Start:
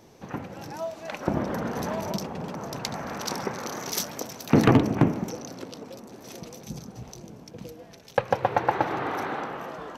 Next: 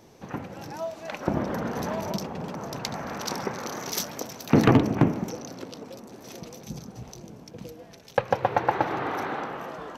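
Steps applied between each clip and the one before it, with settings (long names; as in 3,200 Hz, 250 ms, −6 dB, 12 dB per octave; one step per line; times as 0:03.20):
dynamic equaliser 9,200 Hz, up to −4 dB, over −58 dBFS, Q 2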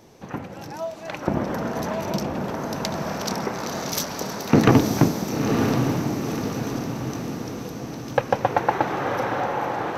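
feedback delay with all-pass diffusion 981 ms, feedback 54%, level −4 dB
level +2.5 dB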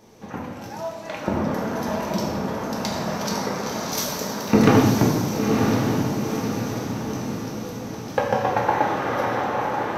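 convolution reverb, pre-delay 3 ms, DRR −2 dB
level −3 dB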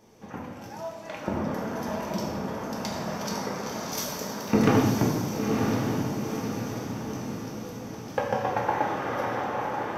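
notch filter 4,000 Hz, Q 12
level −5.5 dB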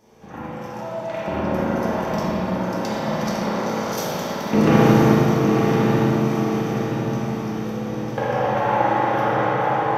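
spring reverb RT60 3.5 s, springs 38/51 ms, chirp 20 ms, DRR −7.5 dB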